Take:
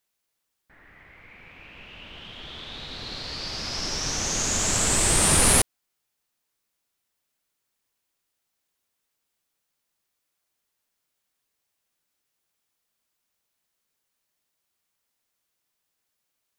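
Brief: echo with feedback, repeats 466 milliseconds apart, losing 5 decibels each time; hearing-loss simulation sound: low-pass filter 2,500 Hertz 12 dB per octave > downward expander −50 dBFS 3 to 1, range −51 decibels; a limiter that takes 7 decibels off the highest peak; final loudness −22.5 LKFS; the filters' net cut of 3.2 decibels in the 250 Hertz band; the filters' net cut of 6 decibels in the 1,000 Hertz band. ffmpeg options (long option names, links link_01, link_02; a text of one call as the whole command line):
ffmpeg -i in.wav -af "equalizer=frequency=250:width_type=o:gain=-4,equalizer=frequency=1000:width_type=o:gain=-7.5,alimiter=limit=-13.5dB:level=0:latency=1,lowpass=2500,aecho=1:1:466|932|1398|1864|2330|2796|3262:0.562|0.315|0.176|0.0988|0.0553|0.031|0.0173,agate=range=-51dB:threshold=-50dB:ratio=3,volume=11.5dB" out.wav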